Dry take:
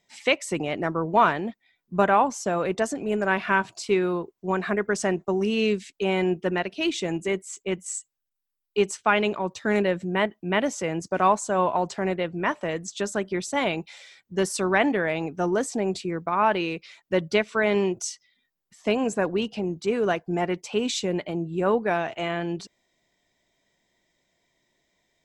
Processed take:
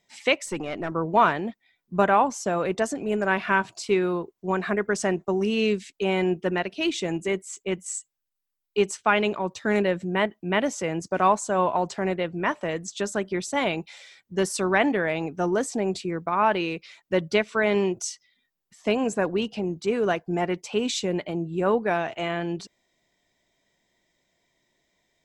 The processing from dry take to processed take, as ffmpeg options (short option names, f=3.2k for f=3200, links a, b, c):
-filter_complex "[0:a]asettb=1/sr,asplit=3[a][b][c];[a]atrim=end=0.464[d];[b]atrim=start=0.46:end=0.92,asetpts=PTS-STARTPTS,afade=t=in:d=0.004:c=qsin,afade=t=out:st=0.456:d=0.004:c=qsin,aeval=exprs='(tanh(7.08*val(0)+0.5)-tanh(0.5))/7.08':c=same[e];[c]atrim=start=0.916[f];[d][e]acrossfade=d=0.004:c1=hsin:c2=qsin[g];[g][f]acrossfade=d=0.004:c1=qsin:c2=hsin"